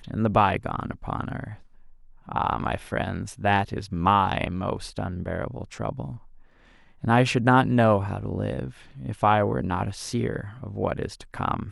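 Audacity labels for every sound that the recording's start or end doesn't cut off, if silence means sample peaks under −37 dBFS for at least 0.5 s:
2.280000	6.170000	sound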